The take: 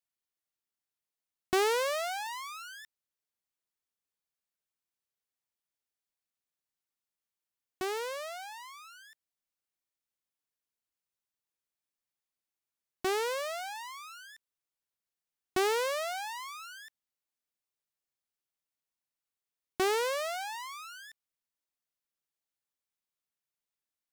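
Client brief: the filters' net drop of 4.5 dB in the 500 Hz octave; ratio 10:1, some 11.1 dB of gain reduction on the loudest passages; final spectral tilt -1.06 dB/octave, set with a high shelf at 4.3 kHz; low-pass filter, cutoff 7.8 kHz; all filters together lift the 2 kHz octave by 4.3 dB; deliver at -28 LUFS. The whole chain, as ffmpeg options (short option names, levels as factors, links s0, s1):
-af "lowpass=7800,equalizer=f=500:t=o:g=-6,equalizer=f=2000:t=o:g=5,highshelf=f=4300:g=3.5,acompressor=threshold=0.0178:ratio=10,volume=4.47"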